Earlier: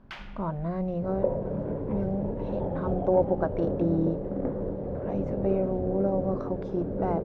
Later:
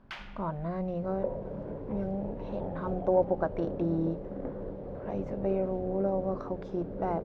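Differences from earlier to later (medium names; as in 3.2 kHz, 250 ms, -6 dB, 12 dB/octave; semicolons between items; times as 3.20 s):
second sound -4.5 dB; master: add bass shelf 490 Hz -4.5 dB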